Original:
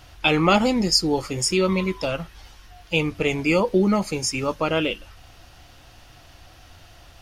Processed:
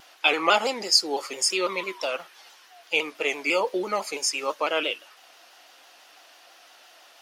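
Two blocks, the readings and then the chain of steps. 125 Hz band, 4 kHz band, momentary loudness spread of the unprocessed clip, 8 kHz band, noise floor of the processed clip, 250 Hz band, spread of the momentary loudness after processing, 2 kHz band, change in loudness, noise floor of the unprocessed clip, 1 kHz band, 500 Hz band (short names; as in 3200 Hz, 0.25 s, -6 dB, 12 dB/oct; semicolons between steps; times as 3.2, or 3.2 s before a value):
under -25 dB, 0.0 dB, 9 LU, 0.0 dB, -54 dBFS, -13.5 dB, 10 LU, 0.0 dB, -3.0 dB, -49 dBFS, -1.0 dB, -4.5 dB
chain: Bessel high-pass 570 Hz, order 4; shaped vibrato saw down 6 Hz, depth 100 cents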